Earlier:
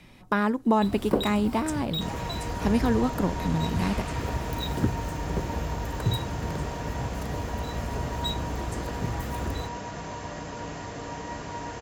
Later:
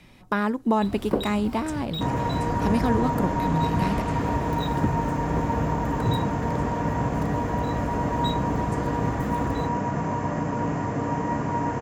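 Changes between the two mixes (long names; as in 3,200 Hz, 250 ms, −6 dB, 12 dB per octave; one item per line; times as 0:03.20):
first sound: add high-shelf EQ 5,200 Hz −6.5 dB
second sound: add octave-band graphic EQ 125/250/500/1,000/2,000/4,000 Hz +12/+11/+4/+8/+4/−10 dB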